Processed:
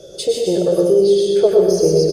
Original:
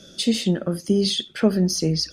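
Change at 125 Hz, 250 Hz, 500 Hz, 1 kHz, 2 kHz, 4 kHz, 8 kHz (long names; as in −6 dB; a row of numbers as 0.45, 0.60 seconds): −1.5 dB, +0.5 dB, +14.0 dB, +6.5 dB, can't be measured, −3.0 dB, +1.0 dB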